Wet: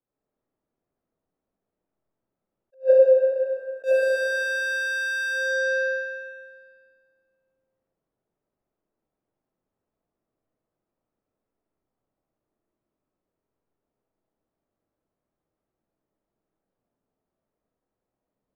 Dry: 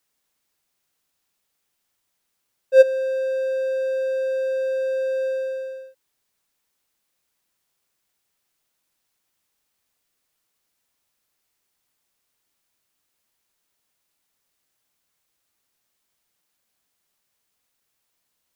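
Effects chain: level-controlled noise filter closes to 400 Hz, open at -21.5 dBFS; 2.74–3.84 s: elliptic low-pass 1.2 kHz, stop band 40 dB; algorithmic reverb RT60 1.9 s, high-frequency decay 0.9×, pre-delay 35 ms, DRR -6.5 dB; in parallel at +3 dB: compression, threshold -21 dBFS, peak gain reduction 14 dB; on the sum: bass shelf 460 Hz -9 dB; attacks held to a fixed rise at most 360 dB/s; trim -1.5 dB

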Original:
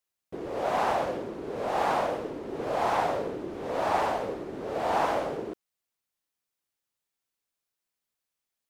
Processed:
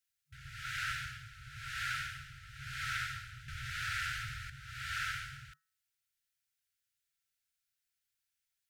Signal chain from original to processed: de-hum 187 Hz, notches 10; FFT band-reject 150–1300 Hz; 3.48–4.50 s: level flattener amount 50%

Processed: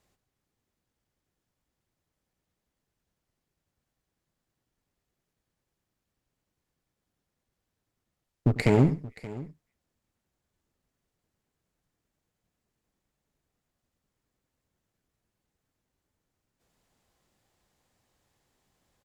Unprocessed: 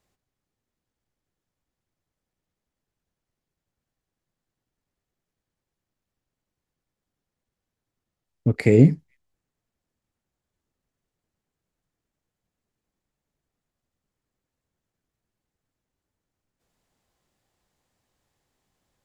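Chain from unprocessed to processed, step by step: compression 2.5:1, threshold -18 dBFS, peak gain reduction 7.5 dB; one-sided clip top -30 dBFS, bottom -11 dBFS; on a send: multi-tap echo 96/576 ms -17/-18 dB; on the sum: trim +2 dB

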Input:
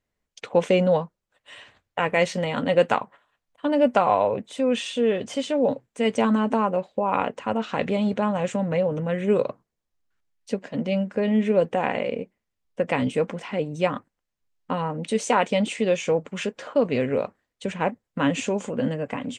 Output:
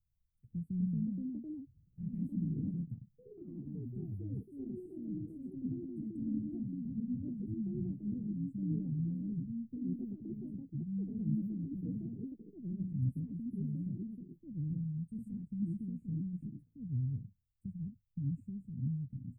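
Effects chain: inverse Chebyshev band-stop 540–6400 Hz, stop band 70 dB; ever faster or slower copies 340 ms, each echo +3 st, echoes 3; trim +3.5 dB

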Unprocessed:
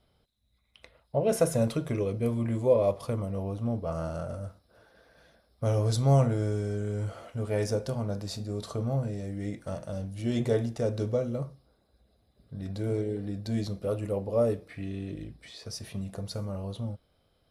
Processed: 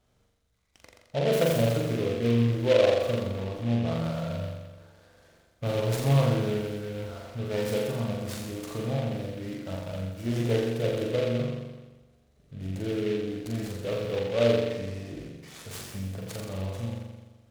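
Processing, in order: on a send: flutter echo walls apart 7.3 m, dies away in 1.2 s; on the sum: delay time shaken by noise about 2.4 kHz, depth 0.056 ms; trim -2.5 dB

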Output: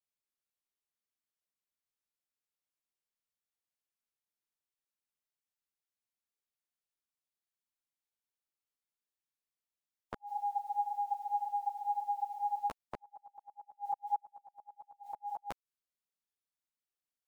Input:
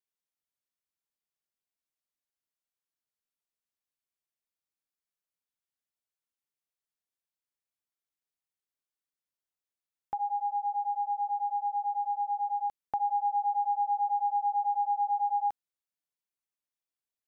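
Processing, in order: spectral peaks clipped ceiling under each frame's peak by 29 dB; inverted gate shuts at -23 dBFS, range -39 dB; three-phase chorus

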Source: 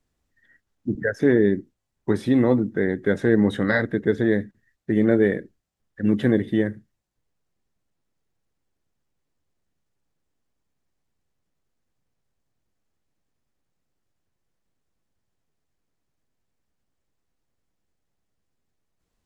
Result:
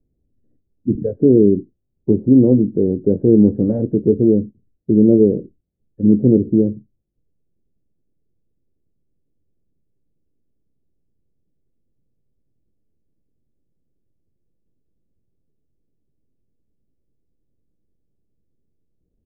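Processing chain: inverse Chebyshev low-pass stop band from 2.7 kHz, stop band 80 dB; doubling 23 ms -13.5 dB; trim +7.5 dB

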